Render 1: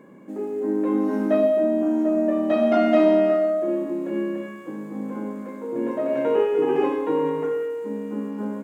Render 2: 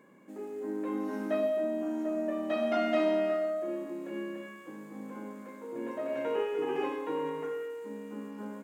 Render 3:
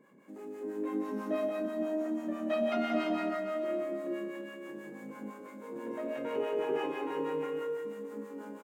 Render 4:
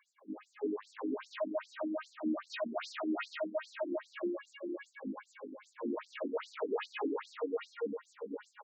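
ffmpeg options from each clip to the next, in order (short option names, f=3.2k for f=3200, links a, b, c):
-af "tiltshelf=f=970:g=-5,volume=-8dB"
-filter_complex "[0:a]acrossover=split=600[a][b];[a]aeval=exprs='val(0)*(1-0.7/2+0.7/2*cos(2*PI*6.1*n/s))':c=same[c];[b]aeval=exprs='val(0)*(1-0.7/2-0.7/2*cos(2*PI*6.1*n/s))':c=same[d];[c][d]amix=inputs=2:normalize=0,aecho=1:1:180|342|487.8|619|737.1:0.631|0.398|0.251|0.158|0.1"
-af "asoftclip=type=hard:threshold=-35.5dB,afftfilt=real='re*between(b*sr/1024,250*pow(6000/250,0.5+0.5*sin(2*PI*2.5*pts/sr))/1.41,250*pow(6000/250,0.5+0.5*sin(2*PI*2.5*pts/sr))*1.41)':imag='im*between(b*sr/1024,250*pow(6000/250,0.5+0.5*sin(2*PI*2.5*pts/sr))/1.41,250*pow(6000/250,0.5+0.5*sin(2*PI*2.5*pts/sr))*1.41)':win_size=1024:overlap=0.75,volume=7.5dB"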